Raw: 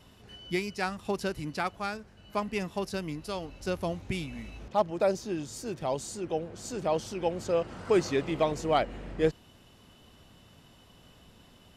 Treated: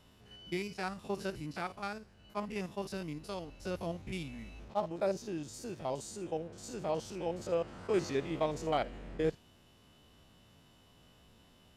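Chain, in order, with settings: stepped spectrum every 50 ms; thin delay 78 ms, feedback 36%, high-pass 4500 Hz, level -14.5 dB; attack slew limiter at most 590 dB/s; gain -4.5 dB

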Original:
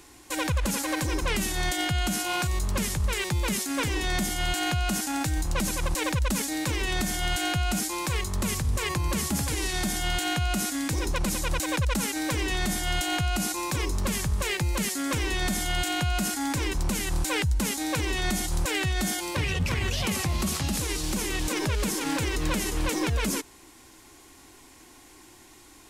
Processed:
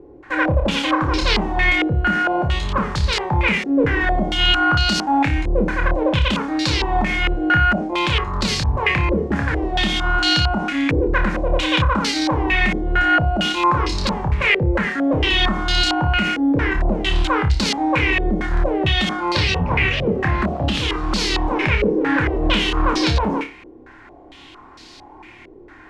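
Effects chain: flutter echo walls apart 4.9 m, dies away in 0.3 s; stepped low-pass 4.4 Hz 470–4400 Hz; gain +6 dB

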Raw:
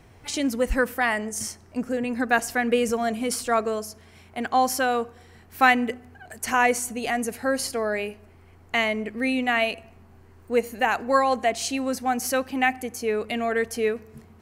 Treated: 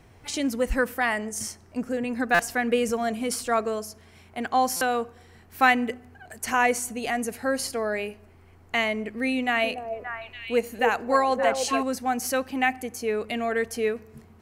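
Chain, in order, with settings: 9.35–11.83 delay with a stepping band-pass 0.288 s, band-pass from 460 Hz, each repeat 1.4 oct, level -1.5 dB; stuck buffer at 2.34/4.76, samples 256, times 8; gain -1.5 dB

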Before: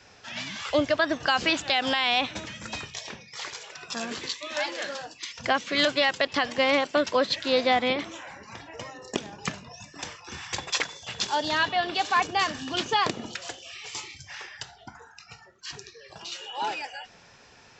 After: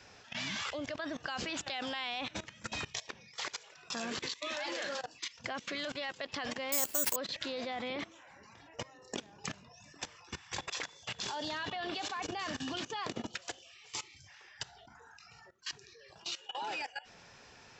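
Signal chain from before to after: level quantiser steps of 19 dB; 6.72–7.16 careless resampling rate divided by 6×, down none, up zero stuff

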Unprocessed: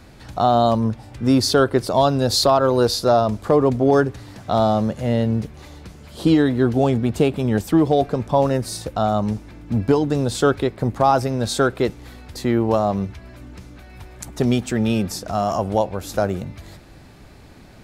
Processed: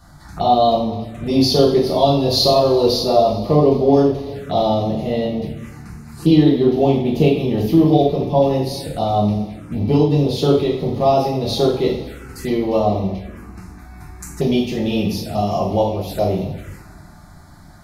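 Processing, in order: two-slope reverb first 0.55 s, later 3.1 s, from -19 dB, DRR -5.5 dB; envelope phaser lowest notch 400 Hz, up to 1500 Hz, full sweep at -16 dBFS; gain -2 dB

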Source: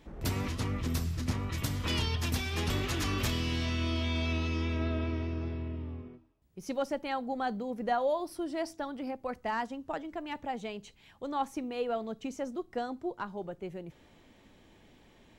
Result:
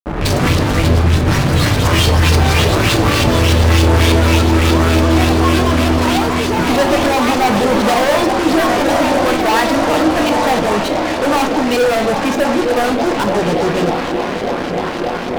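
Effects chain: self-modulated delay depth 0.14 ms; HPF 90 Hz 6 dB/oct; low shelf 120 Hz +7 dB; diffused feedback echo 0.95 s, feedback 72%, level -10 dB; in parallel at +2 dB: level quantiser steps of 10 dB; on the sum: LFO low-pass saw up 3.4 Hz 390–5100 Hz; fuzz box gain 37 dB, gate -42 dBFS; echoes that change speed 0.11 s, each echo +5 st, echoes 2, each echo -6 dB; on a send at -5.5 dB: reverb RT60 0.60 s, pre-delay 7 ms

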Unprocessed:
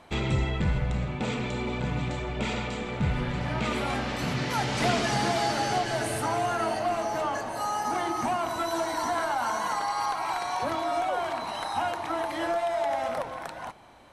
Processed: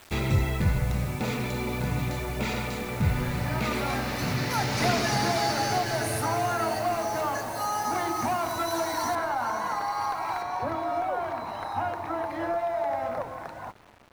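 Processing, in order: thirty-one-band EQ 100 Hz +9 dB, 3150 Hz -8 dB, 8000 Hz -10 dB; bit-crush 8-bit; high shelf 3300 Hz +6.5 dB, from 9.15 s -4.5 dB, from 10.42 s -12 dB

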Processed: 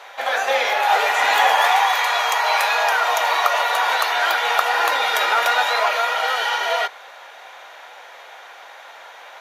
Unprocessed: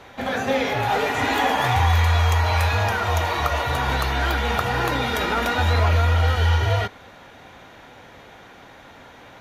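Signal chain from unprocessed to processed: HPF 590 Hz 24 dB/oct; gain +6 dB

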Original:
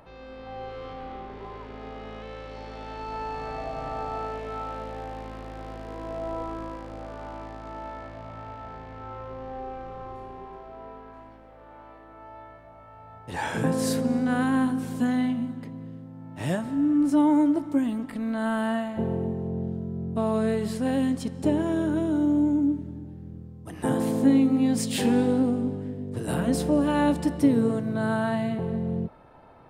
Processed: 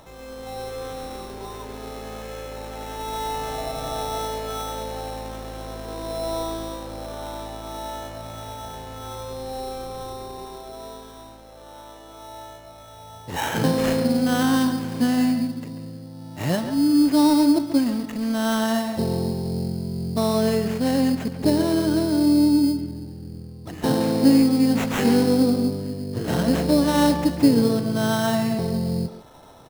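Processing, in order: sample-rate reducer 4700 Hz, jitter 0%; speakerphone echo 0.14 s, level -9 dB; gain +4 dB

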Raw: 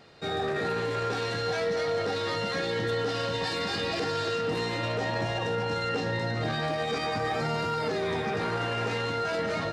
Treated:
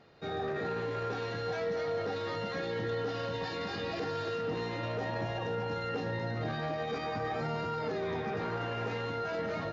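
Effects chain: brick-wall FIR low-pass 7300 Hz; high shelf 2800 Hz -9 dB; gain -4.5 dB

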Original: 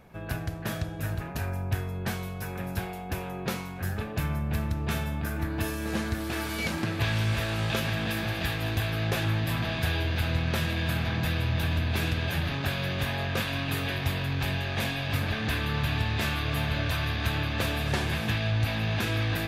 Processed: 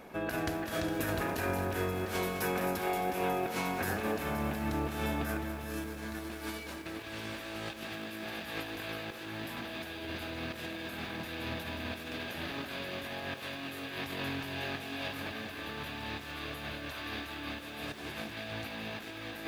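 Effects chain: resonant low shelf 190 Hz -11 dB, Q 1.5; negative-ratio compressor -37 dBFS, ratio -0.5; lo-fi delay 0.205 s, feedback 80%, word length 9-bit, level -10 dB

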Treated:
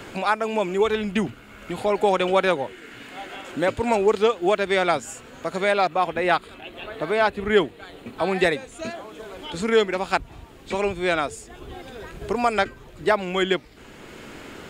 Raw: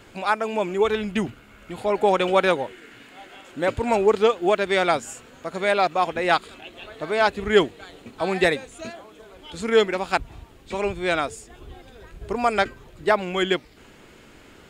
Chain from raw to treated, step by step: 5.87–8.39 bell 6200 Hz -7.5 dB 1.1 oct; three-band squash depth 40%

